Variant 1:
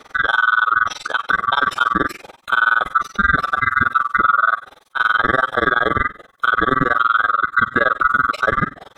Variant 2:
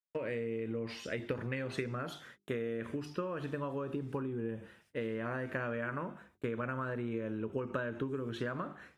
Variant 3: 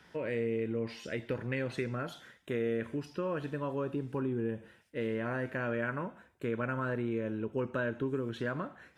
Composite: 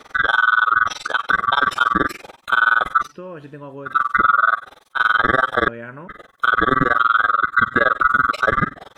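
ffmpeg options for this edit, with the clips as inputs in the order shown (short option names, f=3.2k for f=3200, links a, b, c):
-filter_complex "[2:a]asplit=2[a][b];[0:a]asplit=3[c][d][e];[c]atrim=end=3.16[f];[a]atrim=start=3:end=3.99[g];[d]atrim=start=3.83:end=5.682[h];[b]atrim=start=5.678:end=6.082[i];[e]atrim=start=6.078[j];[f][g]acrossfade=d=0.16:c1=tri:c2=tri[k];[k][h]acrossfade=d=0.16:c1=tri:c2=tri[l];[l][i]acrossfade=d=0.004:c1=hsin:c2=hsin[m];[m][j]acrossfade=d=0.004:c1=hsin:c2=hsin"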